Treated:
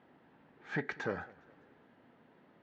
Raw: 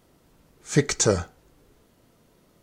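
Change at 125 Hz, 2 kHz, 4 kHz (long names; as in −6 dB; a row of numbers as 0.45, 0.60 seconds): −19.0, −6.0, −23.5 decibels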